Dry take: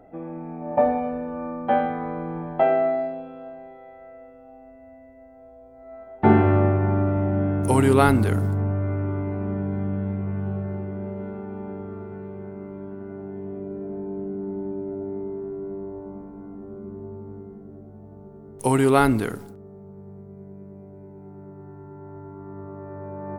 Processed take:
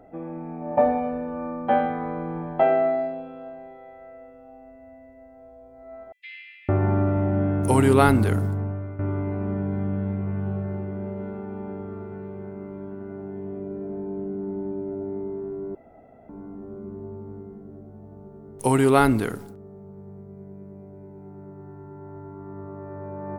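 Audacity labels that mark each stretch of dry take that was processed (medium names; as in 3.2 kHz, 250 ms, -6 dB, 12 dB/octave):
6.120000	6.690000	steep high-pass 2.1 kHz 72 dB/octave
8.310000	8.990000	fade out, to -12 dB
15.750000	16.290000	room tone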